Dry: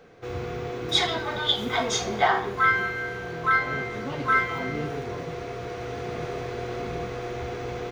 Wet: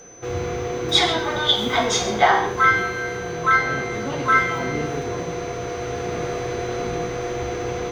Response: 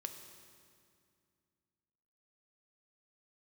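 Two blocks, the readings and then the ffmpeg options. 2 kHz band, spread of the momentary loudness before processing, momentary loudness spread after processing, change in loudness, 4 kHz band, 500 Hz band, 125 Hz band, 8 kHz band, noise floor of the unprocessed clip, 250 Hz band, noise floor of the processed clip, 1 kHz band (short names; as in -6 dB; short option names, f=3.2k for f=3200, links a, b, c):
+4.0 dB, 11 LU, 10 LU, +5.0 dB, +5.5 dB, +6.0 dB, +4.5 dB, +7.0 dB, -35 dBFS, +6.0 dB, -29 dBFS, +5.5 dB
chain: -filter_complex "[0:a]aeval=exprs='val(0)+0.00398*sin(2*PI*6100*n/s)':c=same[a];[1:a]atrim=start_sample=2205,atrim=end_sample=6174,asetrate=40131,aresample=44100[b];[a][b]afir=irnorm=-1:irlink=0,volume=8dB"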